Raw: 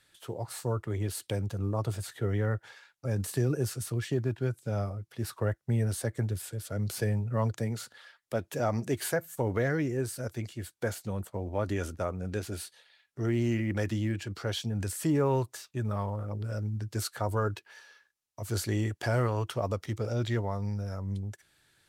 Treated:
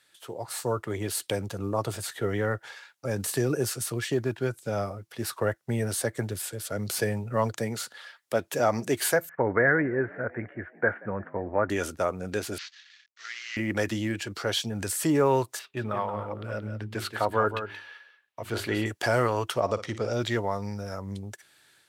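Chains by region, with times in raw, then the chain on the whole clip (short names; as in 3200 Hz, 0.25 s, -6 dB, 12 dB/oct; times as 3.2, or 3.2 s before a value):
9.29–11.7 steep low-pass 2100 Hz 48 dB/oct + bell 1600 Hz +7 dB 0.58 oct + frequency-shifting echo 0.178 s, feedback 59%, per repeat +59 Hz, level -23.5 dB
12.58–13.57 CVSD 32 kbps + Chebyshev high-pass 1600 Hz, order 3
15.59–18.86 resonant high shelf 4300 Hz -11 dB, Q 1.5 + notches 50/100/150/200/250/300/350/400 Hz + echo 0.177 s -9.5 dB
19.6–20.13 LPF 6900 Hz + flutter echo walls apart 9.5 m, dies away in 0.25 s
whole clip: HPF 370 Hz 6 dB/oct; AGC gain up to 5.5 dB; gain +2 dB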